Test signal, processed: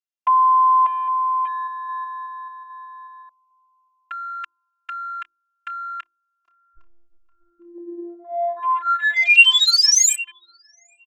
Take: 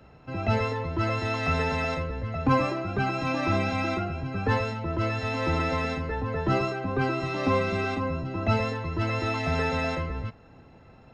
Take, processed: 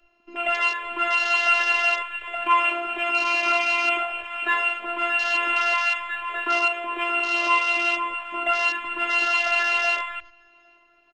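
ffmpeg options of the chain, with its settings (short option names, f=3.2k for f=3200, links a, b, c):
-filter_complex "[0:a]acrossover=split=700[a][b];[a]acompressor=threshold=-40dB:ratio=10[c];[c][b]amix=inputs=2:normalize=0,equalizer=f=2.7k:w=4.7:g=12.5,bandreject=f=50:t=h:w=6,bandreject=f=100:t=h:w=6,bandreject=f=150:t=h:w=6,bandreject=f=200:t=h:w=6,bandreject=f=250:t=h:w=6,bandreject=f=300:t=h:w=6,bandreject=f=350:t=h:w=6,asplit=2[d][e];[e]adelay=809,lowpass=f=2.7k:p=1,volume=-16dB,asplit=2[f][g];[g]adelay=809,lowpass=f=2.7k:p=1,volume=0.43,asplit=2[h][i];[i]adelay=809,lowpass=f=2.7k:p=1,volume=0.43,asplit=2[j][k];[k]adelay=809,lowpass=f=2.7k:p=1,volume=0.43[l];[f][h][j][l]amix=inputs=4:normalize=0[m];[d][m]amix=inputs=2:normalize=0,afftfilt=real='hypot(re,im)*cos(PI*b)':imag='0':win_size=512:overlap=0.75,aresample=16000,aresample=44100,acontrast=78,afwtdn=0.0178,bass=f=250:g=-11,treble=f=4k:g=7,volume=2.5dB"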